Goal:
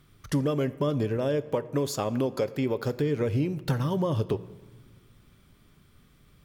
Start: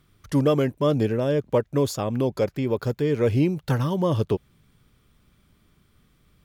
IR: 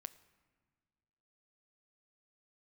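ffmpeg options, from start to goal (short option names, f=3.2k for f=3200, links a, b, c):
-filter_complex "[0:a]asettb=1/sr,asplit=3[a][b][c];[a]atrim=end=1.174[d];[b]atrim=start=1.17:end=2.95,asetpts=PTS-STARTPTS,afade=t=in:d=0.004:c=qsin,afade=t=out:st=1.776:d=0.004:c=qsin,lowshelf=f=160:g=-8.5[e];[c]atrim=start=2.946[f];[d][e]acrossfade=d=0.004:c1=hsin:c2=qsin[g];[g][f]acrossfade=d=0.004:c1=qsin:c2=hsin,acompressor=threshold=-26dB:ratio=6[h];[1:a]atrim=start_sample=2205[i];[h][i]afir=irnorm=-1:irlink=0,volume=7.5dB"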